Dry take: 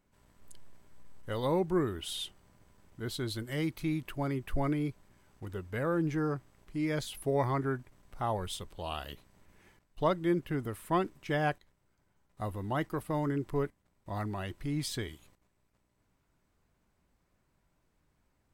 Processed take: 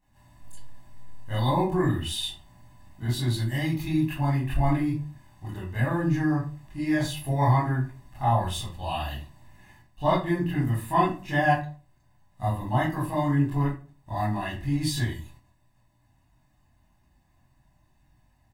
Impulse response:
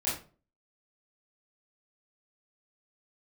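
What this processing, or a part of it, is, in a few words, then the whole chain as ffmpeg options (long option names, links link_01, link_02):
microphone above a desk: -filter_complex "[0:a]aecho=1:1:1.1:0.76[link_01];[1:a]atrim=start_sample=2205[link_02];[link_01][link_02]afir=irnorm=-1:irlink=0,volume=-1.5dB"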